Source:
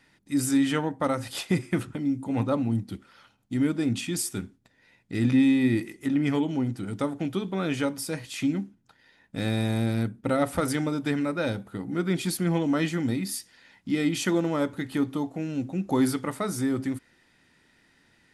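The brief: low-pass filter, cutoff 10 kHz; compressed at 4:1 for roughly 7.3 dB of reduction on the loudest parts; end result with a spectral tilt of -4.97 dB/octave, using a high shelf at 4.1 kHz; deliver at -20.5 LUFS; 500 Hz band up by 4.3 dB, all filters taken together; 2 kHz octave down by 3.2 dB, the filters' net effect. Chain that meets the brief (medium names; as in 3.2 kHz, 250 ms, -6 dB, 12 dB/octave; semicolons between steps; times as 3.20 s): low-pass 10 kHz; peaking EQ 500 Hz +5.5 dB; peaking EQ 2 kHz -6.5 dB; treble shelf 4.1 kHz +9 dB; compression 4:1, threshold -25 dBFS; trim +9.5 dB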